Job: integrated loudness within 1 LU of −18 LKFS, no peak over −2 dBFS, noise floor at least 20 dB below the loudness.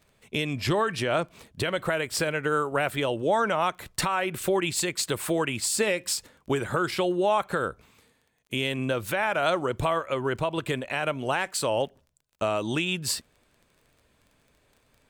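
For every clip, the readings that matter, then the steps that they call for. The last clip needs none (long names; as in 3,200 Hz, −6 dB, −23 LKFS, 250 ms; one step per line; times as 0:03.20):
crackle rate 17 per second; integrated loudness −27.0 LKFS; sample peak −14.0 dBFS; target loudness −18.0 LKFS
→ click removal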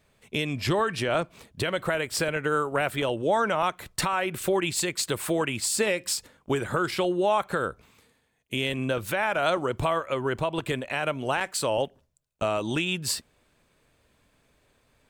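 crackle rate 0.20 per second; integrated loudness −27.0 LKFS; sample peak −14.0 dBFS; target loudness −18.0 LKFS
→ level +9 dB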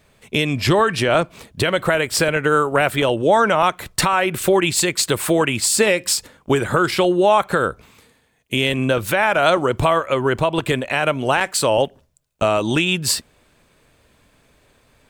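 integrated loudness −18.0 LKFS; sample peak −5.0 dBFS; background noise floor −59 dBFS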